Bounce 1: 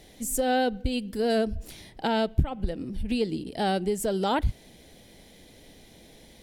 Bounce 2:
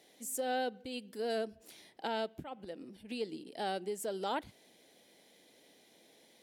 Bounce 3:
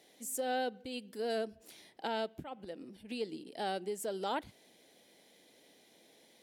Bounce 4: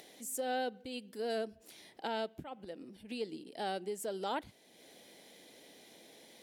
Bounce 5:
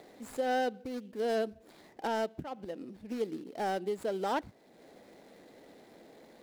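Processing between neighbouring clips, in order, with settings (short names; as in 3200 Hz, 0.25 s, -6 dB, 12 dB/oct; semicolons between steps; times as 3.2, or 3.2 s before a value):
HPF 310 Hz 12 dB/oct; gain -9 dB
nothing audible
upward compressor, threshold -48 dBFS; gain -1 dB
median filter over 15 samples; gain +5.5 dB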